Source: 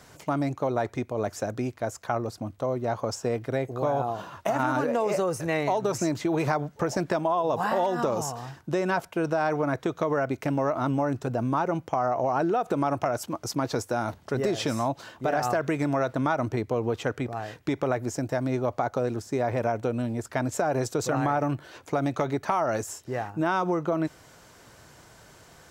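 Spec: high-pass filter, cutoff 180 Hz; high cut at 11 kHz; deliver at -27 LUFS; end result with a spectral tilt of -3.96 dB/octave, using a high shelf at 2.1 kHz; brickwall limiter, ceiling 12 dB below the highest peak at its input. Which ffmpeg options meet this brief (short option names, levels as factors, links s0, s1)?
-af "highpass=180,lowpass=11000,highshelf=f=2100:g=-7.5,volume=2.11,alimiter=limit=0.141:level=0:latency=1"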